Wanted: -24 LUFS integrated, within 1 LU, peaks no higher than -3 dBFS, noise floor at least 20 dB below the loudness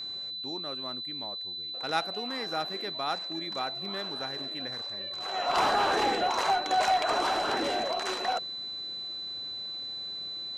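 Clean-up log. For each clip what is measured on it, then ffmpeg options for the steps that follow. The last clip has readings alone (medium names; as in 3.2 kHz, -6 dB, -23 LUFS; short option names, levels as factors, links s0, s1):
steady tone 4 kHz; tone level -35 dBFS; loudness -30.5 LUFS; peak level -14.0 dBFS; loudness target -24.0 LUFS
-> -af "bandreject=f=4000:w=30"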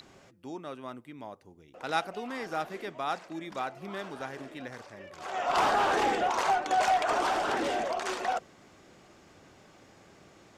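steady tone not found; loudness -30.5 LUFS; peak level -14.5 dBFS; loudness target -24.0 LUFS
-> -af "volume=2.11"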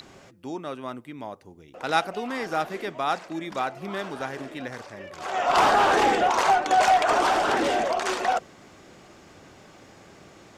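loudness -24.0 LUFS; peak level -8.5 dBFS; noise floor -51 dBFS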